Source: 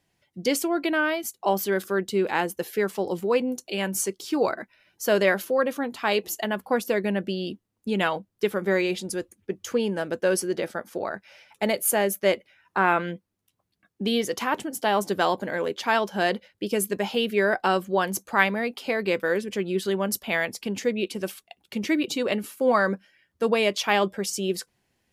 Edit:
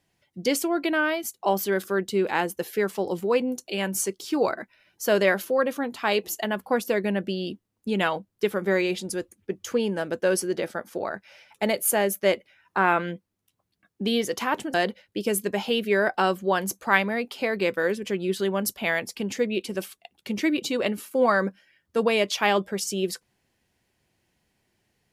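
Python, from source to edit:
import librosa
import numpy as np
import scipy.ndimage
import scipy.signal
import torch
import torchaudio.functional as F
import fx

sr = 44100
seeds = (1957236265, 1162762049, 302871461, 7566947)

y = fx.edit(x, sr, fx.cut(start_s=14.74, length_s=1.46), tone=tone)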